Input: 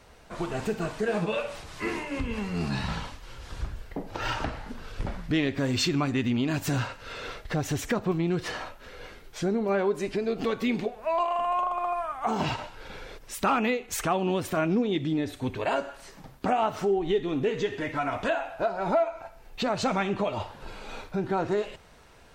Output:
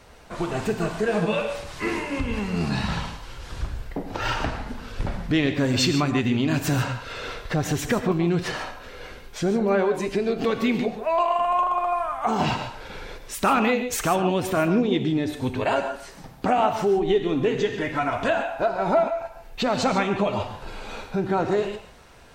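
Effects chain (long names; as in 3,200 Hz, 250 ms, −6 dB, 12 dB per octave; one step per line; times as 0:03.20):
reverb whose tail is shaped and stops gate 170 ms rising, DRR 8.5 dB
level +4 dB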